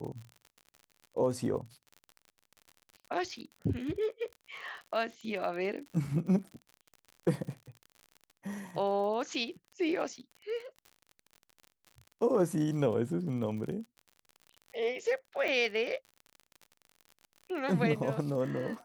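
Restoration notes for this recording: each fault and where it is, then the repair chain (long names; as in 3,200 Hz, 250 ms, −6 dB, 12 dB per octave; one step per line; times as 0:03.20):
surface crackle 51 per second −41 dBFS
0:15.48–0:15.49: drop-out 5.4 ms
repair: click removal
repair the gap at 0:15.48, 5.4 ms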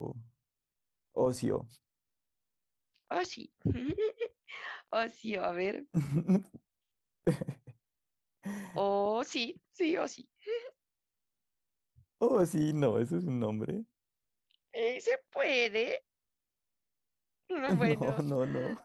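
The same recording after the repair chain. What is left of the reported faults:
none of them is left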